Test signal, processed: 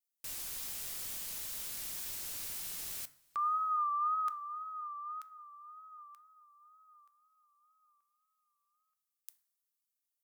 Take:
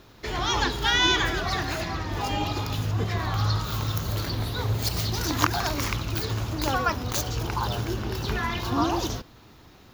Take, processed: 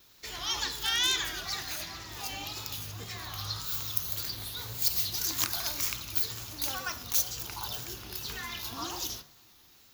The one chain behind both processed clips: one-sided wavefolder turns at -13.5 dBFS; de-hum 70.48 Hz, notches 29; wow and flutter 72 cents; pre-emphasis filter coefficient 0.9; two-slope reverb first 0.43 s, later 4.9 s, from -22 dB, DRR 15.5 dB; trim +2.5 dB

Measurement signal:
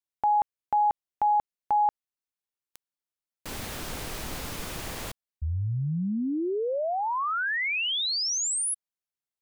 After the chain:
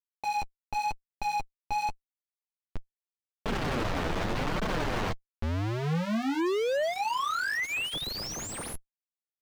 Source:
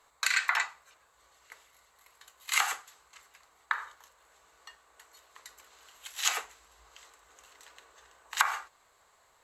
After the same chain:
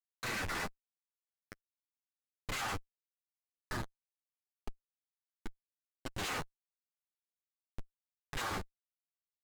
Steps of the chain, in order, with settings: block-companded coder 5-bit; Schmitt trigger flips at -35.5 dBFS; flange 0.86 Hz, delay 4.4 ms, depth 8 ms, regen -8%; slew-rate limiter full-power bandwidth 52 Hz; trim +4 dB

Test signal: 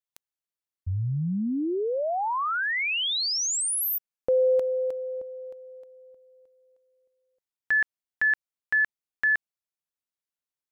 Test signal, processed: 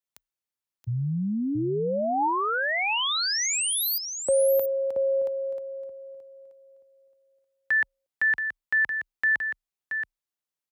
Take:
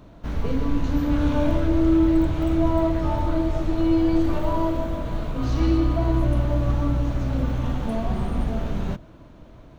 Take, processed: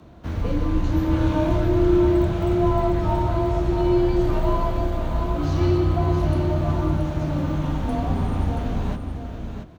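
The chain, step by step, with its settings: frequency shift +28 Hz; delay 677 ms -7 dB; dynamic bell 870 Hz, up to +4 dB, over -43 dBFS, Q 5.2

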